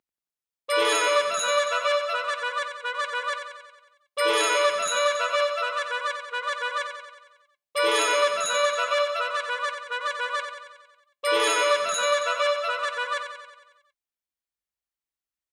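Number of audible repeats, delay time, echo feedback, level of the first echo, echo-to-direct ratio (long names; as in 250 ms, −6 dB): 7, 91 ms, 59%, −7.5 dB, −5.5 dB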